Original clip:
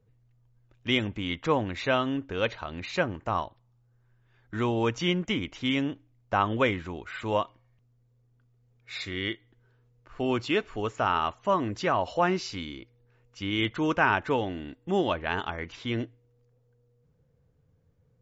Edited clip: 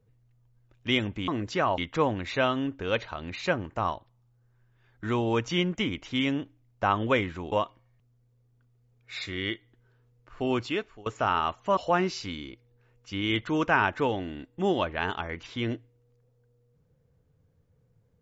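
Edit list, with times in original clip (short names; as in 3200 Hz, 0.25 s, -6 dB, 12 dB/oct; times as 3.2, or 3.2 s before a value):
7.02–7.31 cut
10.36–10.85 fade out, to -23 dB
11.56–12.06 move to 1.28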